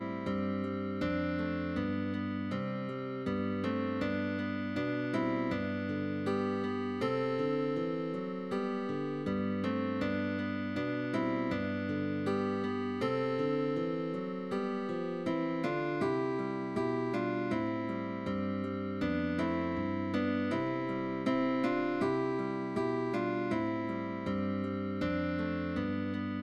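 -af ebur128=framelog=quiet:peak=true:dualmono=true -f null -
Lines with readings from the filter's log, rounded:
Integrated loudness:
  I:         -31.0 LUFS
  Threshold: -41.0 LUFS
Loudness range:
  LRA:         1.9 LU
  Threshold: -51.0 LUFS
  LRA low:   -31.8 LUFS
  LRA high:  -29.8 LUFS
True peak:
  Peak:      -19.6 dBFS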